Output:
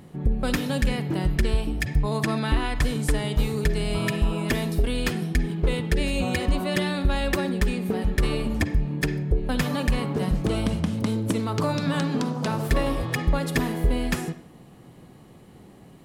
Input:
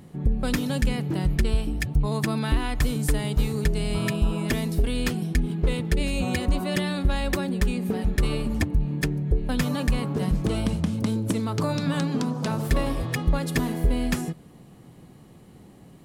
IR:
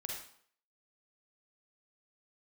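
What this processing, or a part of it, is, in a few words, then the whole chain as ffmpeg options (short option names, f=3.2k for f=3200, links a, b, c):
filtered reverb send: -filter_complex "[0:a]asettb=1/sr,asplit=3[a][b][c];[a]atrim=end=2.234[d];[b]atrim=start=2.23:end=3.36,asetpts=PTS-STARTPTS,afade=t=in:d=0.004:c=qsin,afade=t=out:st=1.126:d=0.004:c=qsin,lowpass=11k[e];[c]atrim=start=3.356[f];[d][e]acrossfade=d=0.004:c1=hsin:c2=qsin[g];[g][f]acrossfade=d=0.004:c1=qsin:c2=hsin,asplit=2[h][i];[i]highpass=260,lowpass=4.8k[j];[1:a]atrim=start_sample=2205[k];[j][k]afir=irnorm=-1:irlink=0,volume=-6.5dB[l];[h][l]amix=inputs=2:normalize=0"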